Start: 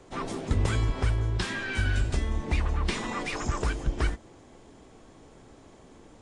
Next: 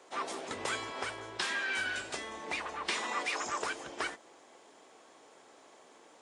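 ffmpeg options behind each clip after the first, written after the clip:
-af "highpass=560"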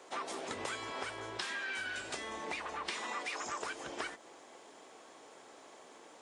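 -af "acompressor=threshold=-40dB:ratio=4,volume=2.5dB"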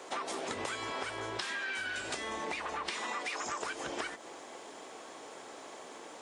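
-af "acompressor=threshold=-43dB:ratio=3,volume=7.5dB"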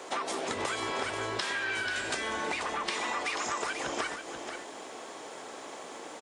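-af "aecho=1:1:486:0.398,volume=4dB"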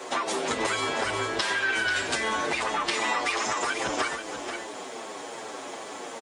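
-filter_complex "[0:a]asplit=2[a][b];[b]adelay=7.8,afreqshift=-2.5[c];[a][c]amix=inputs=2:normalize=1,volume=8.5dB"

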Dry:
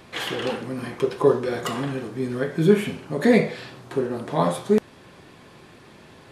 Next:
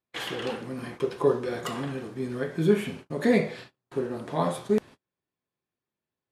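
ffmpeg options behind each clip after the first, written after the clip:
-af "agate=range=-38dB:threshold=-36dB:ratio=16:detection=peak,volume=-5dB"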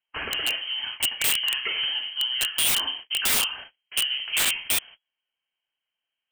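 -af "equalizer=f=2k:w=2.8:g=-2.5,lowpass=f=2.8k:t=q:w=0.5098,lowpass=f=2.8k:t=q:w=0.6013,lowpass=f=2.8k:t=q:w=0.9,lowpass=f=2.8k:t=q:w=2.563,afreqshift=-3300,aeval=exprs='(mod(11.9*val(0)+1,2)-1)/11.9':c=same,volume=5dB"

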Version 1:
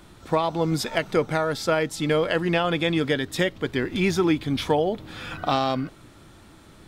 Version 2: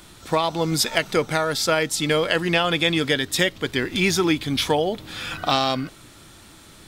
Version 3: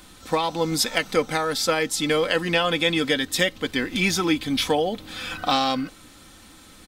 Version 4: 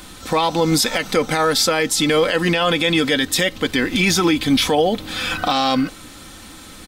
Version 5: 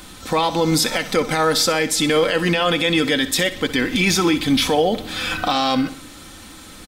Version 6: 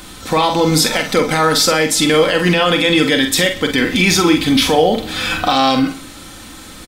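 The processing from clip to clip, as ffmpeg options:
-af "highshelf=f=2.2k:g=11"
-af "aecho=1:1:3.9:0.49,volume=-2dB"
-af "alimiter=level_in=15.5dB:limit=-1dB:release=50:level=0:latency=1,volume=-6.5dB"
-af "aecho=1:1:63|126|189|252:0.188|0.0904|0.0434|0.0208,volume=-1dB"
-filter_complex "[0:a]asplit=2[a][b];[b]adelay=45,volume=-7dB[c];[a][c]amix=inputs=2:normalize=0,volume=4dB"

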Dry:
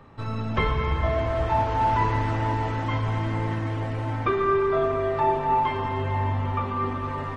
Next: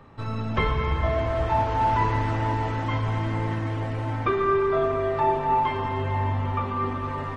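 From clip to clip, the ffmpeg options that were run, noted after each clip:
-af anull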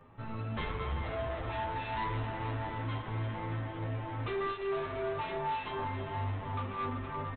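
-filter_complex "[0:a]aresample=8000,volume=25.5dB,asoftclip=hard,volume=-25.5dB,aresample=44100,asplit=2[a][b];[b]adelay=9.6,afreqshift=2.9[c];[a][c]amix=inputs=2:normalize=1,volume=-4.5dB"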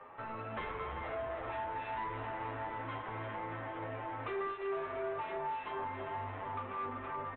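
-filter_complex "[0:a]acrossover=split=420 2800:gain=0.0794 1 0.0708[a][b][c];[a][b][c]amix=inputs=3:normalize=0,acrossover=split=300[d][e];[e]acompressor=threshold=-53dB:ratio=2.5[f];[d][f]amix=inputs=2:normalize=0,volume=9.5dB"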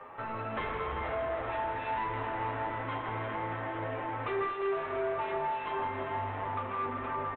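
-af "aecho=1:1:159:0.376,volume=5dB"

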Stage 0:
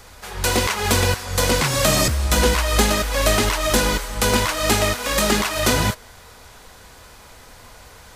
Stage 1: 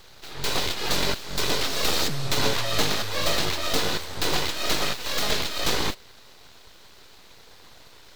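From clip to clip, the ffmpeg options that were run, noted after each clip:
-af "aeval=exprs='abs(val(0))':c=same,equalizer=f=400:t=o:w=0.67:g=4,equalizer=f=4k:t=o:w=0.67:g=8,equalizer=f=10k:t=o:w=0.67:g=-7,volume=-5dB"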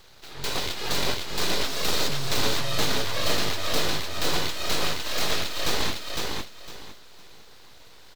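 -af "aecho=1:1:507|1014|1521:0.708|0.17|0.0408,volume=-3dB"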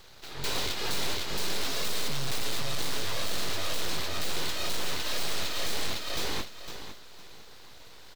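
-af "asoftclip=type=hard:threshold=-23dB"

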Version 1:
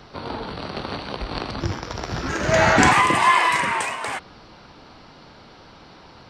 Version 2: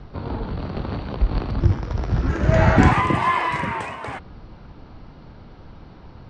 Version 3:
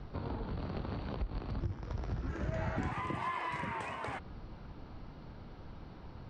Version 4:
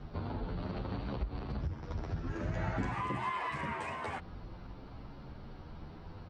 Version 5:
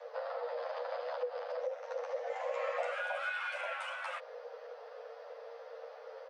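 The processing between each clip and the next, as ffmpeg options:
-af "aemphasis=mode=reproduction:type=riaa,volume=-3.5dB"
-af "acompressor=threshold=-29dB:ratio=4,volume=-6.5dB"
-filter_complex "[0:a]asplit=2[a][b];[b]adelay=10,afreqshift=0.51[c];[a][c]amix=inputs=2:normalize=1,volume=4dB"
-af "afreqshift=440,volume=-1.5dB"

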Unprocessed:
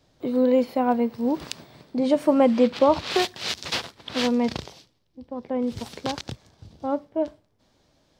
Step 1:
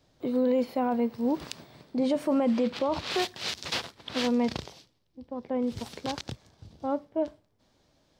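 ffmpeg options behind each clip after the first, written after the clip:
-af "alimiter=limit=-15dB:level=0:latency=1:release=20,volume=-3dB"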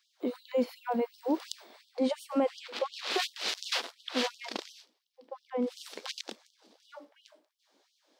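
-af "afftfilt=real='re*gte(b*sr/1024,200*pow(2900/200,0.5+0.5*sin(2*PI*2.8*pts/sr)))':imag='im*gte(b*sr/1024,200*pow(2900/200,0.5+0.5*sin(2*PI*2.8*pts/sr)))':win_size=1024:overlap=0.75"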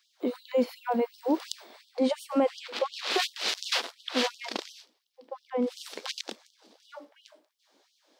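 -af "lowshelf=f=69:g=-10,volume=3.5dB"

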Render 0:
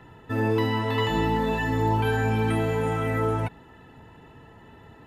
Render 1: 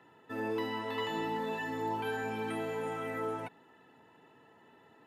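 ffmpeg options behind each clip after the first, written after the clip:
-af "highpass=250,volume=-9dB"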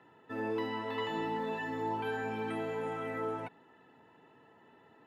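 -af "highshelf=f=6k:g=-11.5"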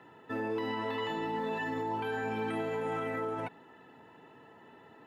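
-af "alimiter=level_in=8dB:limit=-24dB:level=0:latency=1,volume=-8dB,volume=5.5dB"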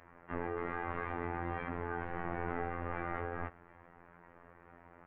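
-af "aeval=exprs='abs(val(0))':c=same,highpass=f=200:t=q:w=0.5412,highpass=f=200:t=q:w=1.307,lowpass=f=2.3k:t=q:w=0.5176,lowpass=f=2.3k:t=q:w=0.7071,lowpass=f=2.3k:t=q:w=1.932,afreqshift=-330,afftfilt=real='hypot(re,im)*cos(PI*b)':imag='0':win_size=2048:overlap=0.75,volume=6dB"

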